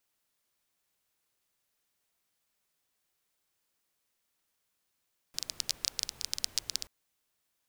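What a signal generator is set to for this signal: rain from filtered ticks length 1.53 s, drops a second 14, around 5 kHz, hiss -18 dB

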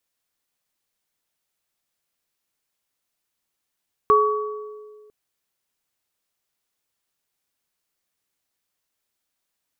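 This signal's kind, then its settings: sine partials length 1.00 s, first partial 424 Hz, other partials 1.13 kHz, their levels 4 dB, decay 1.86 s, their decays 1.07 s, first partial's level -15.5 dB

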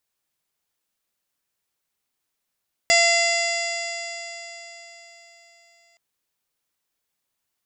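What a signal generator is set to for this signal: stretched partials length 3.07 s, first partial 681 Hz, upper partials -17.5/1.5/-6/-9.5/-15.5/-0.5/-10/-14.5/-3.5/-12 dB, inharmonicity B 0.00082, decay 4.12 s, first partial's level -19 dB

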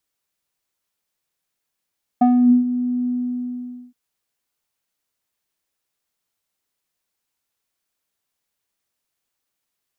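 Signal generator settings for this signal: synth note square B3 12 dB/octave, low-pass 250 Hz, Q 4.1, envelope 1.5 oct, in 0.30 s, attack 9 ms, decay 0.42 s, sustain -18.5 dB, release 0.86 s, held 0.86 s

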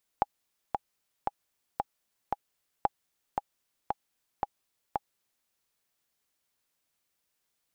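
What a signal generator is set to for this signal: metronome 114 bpm, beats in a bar 5, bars 2, 819 Hz, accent 4.5 dB -10.5 dBFS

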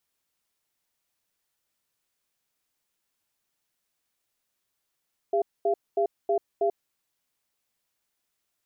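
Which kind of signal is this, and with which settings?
cadence 403 Hz, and 682 Hz, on 0.09 s, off 0.23 s, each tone -23.5 dBFS 1.58 s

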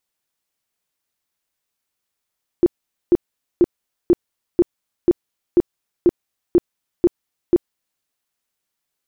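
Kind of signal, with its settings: tone bursts 349 Hz, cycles 11, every 0.49 s, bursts 11, -8 dBFS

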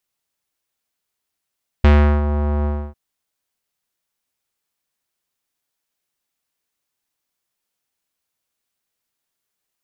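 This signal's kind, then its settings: synth note square D2 12 dB/octave, low-pass 1 kHz, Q 1.1, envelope 1.5 oct, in 0.44 s, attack 2.9 ms, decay 0.37 s, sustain -10 dB, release 0.29 s, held 0.81 s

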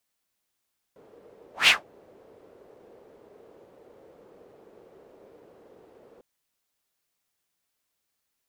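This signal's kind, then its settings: whoosh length 5.25 s, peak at 0.72 s, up 0.16 s, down 0.17 s, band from 460 Hz, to 2.8 kHz, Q 3.3, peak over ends 38 dB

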